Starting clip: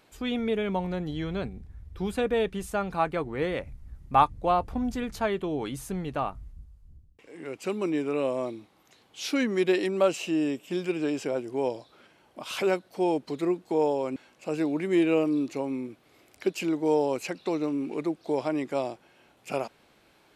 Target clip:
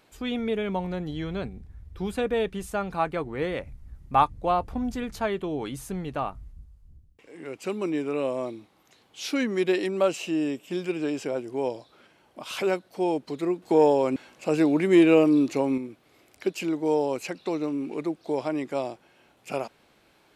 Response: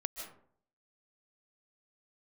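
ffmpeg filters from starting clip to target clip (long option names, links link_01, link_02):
-filter_complex "[0:a]asettb=1/sr,asplit=3[link_01][link_02][link_03];[link_01]atrim=end=13.624[link_04];[link_02]atrim=start=13.62:end=15.78,asetpts=PTS-STARTPTS,afade=type=in:duration=0.004:curve=qsin,afade=type=out:start_time=2.156:duration=0.004:curve=qsin,acontrast=57[link_05];[link_03]atrim=start=15.776[link_06];[link_04][link_05]acrossfade=duration=0.004:curve1=hsin:curve2=qsin[link_07];[link_07][link_06]acrossfade=duration=0.004:curve1=qsin:curve2=hsin"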